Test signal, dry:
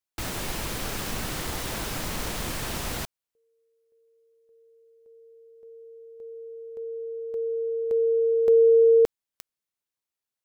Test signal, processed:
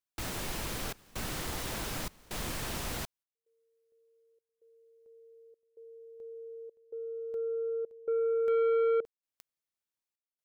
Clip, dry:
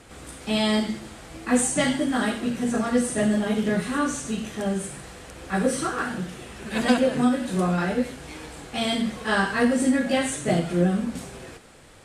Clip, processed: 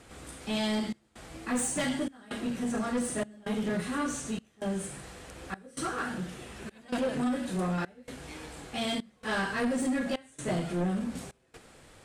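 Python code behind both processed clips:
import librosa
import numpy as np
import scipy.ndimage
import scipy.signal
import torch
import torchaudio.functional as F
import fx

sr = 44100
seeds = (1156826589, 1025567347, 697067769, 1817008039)

y = fx.step_gate(x, sr, bpm=65, pattern='xxxx.xxxx.', floor_db=-24.0, edge_ms=4.5)
y = 10.0 ** (-20.0 / 20.0) * np.tanh(y / 10.0 ** (-20.0 / 20.0))
y = y * librosa.db_to_amplitude(-4.5)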